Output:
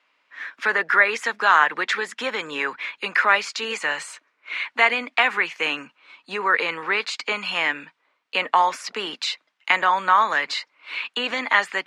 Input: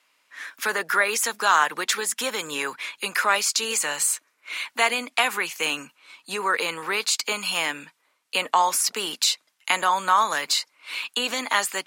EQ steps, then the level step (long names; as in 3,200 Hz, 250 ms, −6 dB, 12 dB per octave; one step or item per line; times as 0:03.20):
dynamic equaliser 1,900 Hz, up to +6 dB, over −38 dBFS, Q 2.4
band-pass filter 150–3,100 Hz
+1.5 dB